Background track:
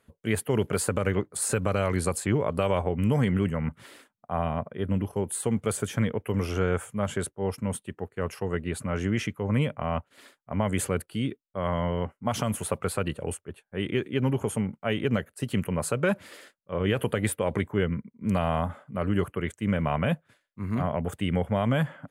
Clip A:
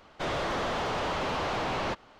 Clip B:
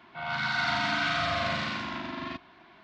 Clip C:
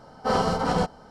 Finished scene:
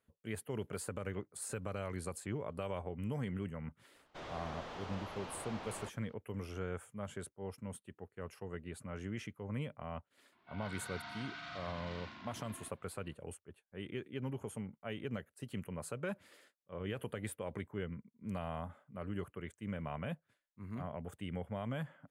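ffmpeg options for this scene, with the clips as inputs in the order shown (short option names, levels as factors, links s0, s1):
-filter_complex "[0:a]volume=0.178[s0];[2:a]alimiter=limit=0.0944:level=0:latency=1:release=41[s1];[1:a]atrim=end=2.19,asetpts=PTS-STARTPTS,volume=0.158,afade=t=in:d=0.004:c=hsin,afade=t=out:st=2.186:d=0.004:c=hsin,adelay=3950[s2];[s1]atrim=end=2.83,asetpts=PTS-STARTPTS,volume=0.133,afade=t=in:d=0.004:c=hsin,afade=t=out:st=2.826:d=0.004:c=hsin,adelay=10320[s3];[s0][s2][s3]amix=inputs=3:normalize=0"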